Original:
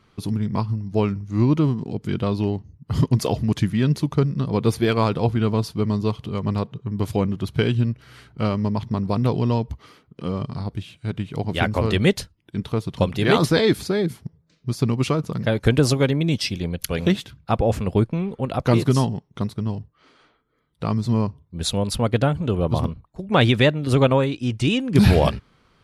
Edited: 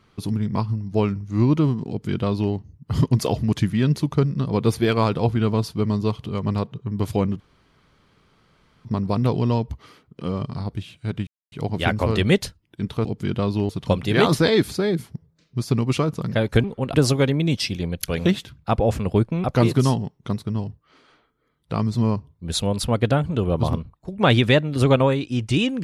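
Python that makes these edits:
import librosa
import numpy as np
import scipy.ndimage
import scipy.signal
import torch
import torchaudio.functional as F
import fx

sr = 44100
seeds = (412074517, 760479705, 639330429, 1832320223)

y = fx.edit(x, sr, fx.duplicate(start_s=1.89, length_s=0.64, to_s=12.8),
    fx.room_tone_fill(start_s=7.4, length_s=1.45),
    fx.insert_silence(at_s=11.27, length_s=0.25),
    fx.move(start_s=18.25, length_s=0.3, to_s=15.75), tone=tone)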